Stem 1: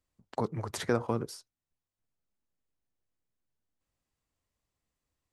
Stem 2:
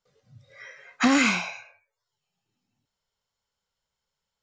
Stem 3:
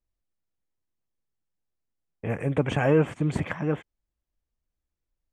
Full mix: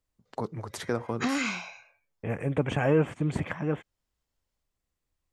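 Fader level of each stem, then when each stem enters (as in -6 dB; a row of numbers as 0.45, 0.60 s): -1.5, -8.5, -2.5 dB; 0.00, 0.20, 0.00 s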